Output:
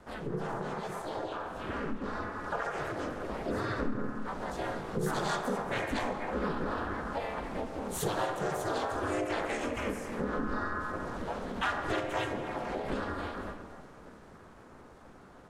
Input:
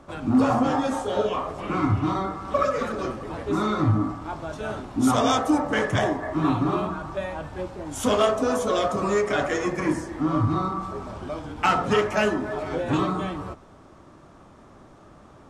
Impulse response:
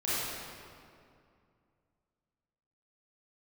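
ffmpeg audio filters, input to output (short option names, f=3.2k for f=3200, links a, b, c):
-filter_complex "[0:a]adynamicequalizer=threshold=0.0141:dfrequency=290:dqfactor=3.2:tfrequency=290:tqfactor=3.2:attack=5:release=100:ratio=0.375:range=2.5:mode=cutabove:tftype=bell,dynaudnorm=f=330:g=17:m=14.5dB,asplit=2[a][b];[1:a]atrim=start_sample=2205,afade=t=out:st=0.38:d=0.01,atrim=end_sample=17199[c];[b][c]afir=irnorm=-1:irlink=0,volume=-17dB[d];[a][d]amix=inputs=2:normalize=0,aeval=exprs='val(0)*sin(2*PI*110*n/s)':c=same,asplit=3[e][f][g];[f]asetrate=52444,aresample=44100,atempo=0.840896,volume=-2dB[h];[g]asetrate=58866,aresample=44100,atempo=0.749154,volume=-4dB[i];[e][h][i]amix=inputs=3:normalize=0,acompressor=threshold=-32dB:ratio=2.5,volume=-5.5dB"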